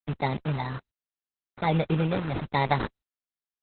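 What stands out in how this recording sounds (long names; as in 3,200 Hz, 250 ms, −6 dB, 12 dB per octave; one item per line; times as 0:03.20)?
a quantiser's noise floor 6 bits, dither none
phaser sweep stages 8, 1.2 Hz, lowest notch 420–4,200 Hz
aliases and images of a low sample rate 2,900 Hz, jitter 0%
Opus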